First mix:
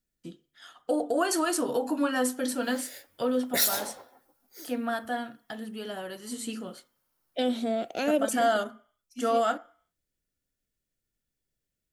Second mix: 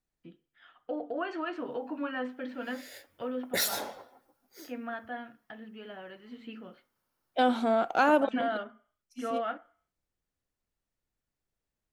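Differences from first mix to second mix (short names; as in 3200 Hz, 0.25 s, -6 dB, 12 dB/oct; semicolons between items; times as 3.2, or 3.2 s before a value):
first voice: add ladder low-pass 3000 Hz, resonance 40%; second voice: add band shelf 1100 Hz +16 dB 1.2 oct; master: add high shelf 6300 Hz -8.5 dB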